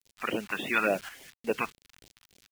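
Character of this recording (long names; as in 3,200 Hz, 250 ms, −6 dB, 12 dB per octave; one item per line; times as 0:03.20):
a quantiser's noise floor 8 bits, dither none
phaser sweep stages 2, 3.5 Hz, lowest notch 420–1,300 Hz
tremolo saw up 0.92 Hz, depth 55%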